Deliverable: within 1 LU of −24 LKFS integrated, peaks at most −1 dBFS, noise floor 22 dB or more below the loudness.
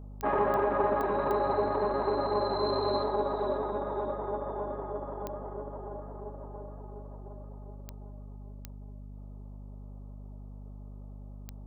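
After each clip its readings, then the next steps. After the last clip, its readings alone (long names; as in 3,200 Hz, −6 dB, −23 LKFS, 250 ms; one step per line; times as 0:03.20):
number of clicks 8; mains hum 50 Hz; hum harmonics up to 250 Hz; level of the hum −41 dBFS; integrated loudness −31.0 LKFS; sample peak −15.0 dBFS; target loudness −24.0 LKFS
→ click removal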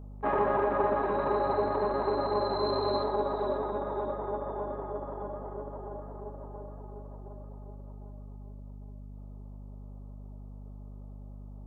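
number of clicks 0; mains hum 50 Hz; hum harmonics up to 250 Hz; level of the hum −41 dBFS
→ hum removal 50 Hz, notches 5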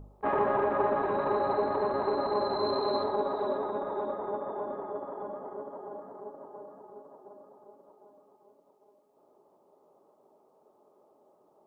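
mains hum none found; integrated loudness −31.0 LKFS; sample peak −15.0 dBFS; target loudness −24.0 LKFS
→ level +7 dB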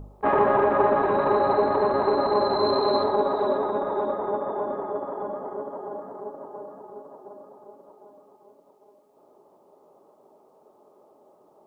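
integrated loudness −24.0 LKFS; sample peak −8.0 dBFS; background noise floor −59 dBFS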